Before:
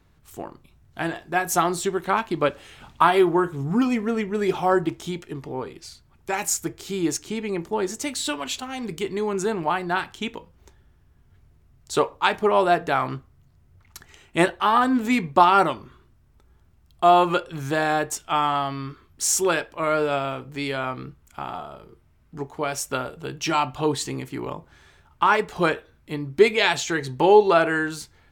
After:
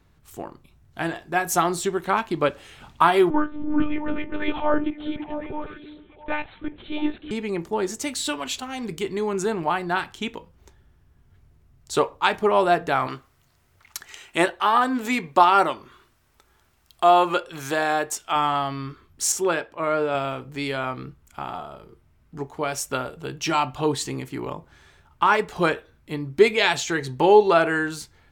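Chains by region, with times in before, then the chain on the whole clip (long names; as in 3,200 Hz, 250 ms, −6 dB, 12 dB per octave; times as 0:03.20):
0:03.30–0:07.31: one-pitch LPC vocoder at 8 kHz 300 Hz + echo through a band-pass that steps 331 ms, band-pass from 260 Hz, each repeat 1.4 octaves, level −7 dB
0:13.07–0:18.36: bass and treble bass −9 dB, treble 0 dB + one half of a high-frequency compander encoder only
0:19.32–0:20.15: high-pass filter 140 Hz 6 dB per octave + high-shelf EQ 3,100 Hz −9 dB
whole clip: no processing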